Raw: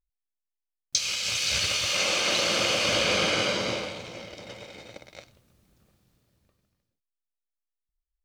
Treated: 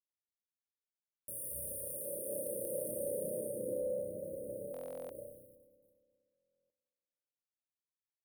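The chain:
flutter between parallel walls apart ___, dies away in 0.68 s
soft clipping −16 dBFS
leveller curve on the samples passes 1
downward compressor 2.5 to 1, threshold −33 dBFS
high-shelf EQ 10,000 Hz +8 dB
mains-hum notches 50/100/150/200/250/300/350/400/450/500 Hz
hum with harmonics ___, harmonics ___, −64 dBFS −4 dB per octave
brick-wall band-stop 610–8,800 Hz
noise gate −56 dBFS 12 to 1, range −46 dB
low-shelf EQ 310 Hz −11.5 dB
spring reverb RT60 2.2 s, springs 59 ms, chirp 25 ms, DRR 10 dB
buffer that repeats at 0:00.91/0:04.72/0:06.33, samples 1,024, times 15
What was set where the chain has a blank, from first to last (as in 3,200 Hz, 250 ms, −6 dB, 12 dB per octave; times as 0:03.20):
5.4 metres, 100 Hz, 27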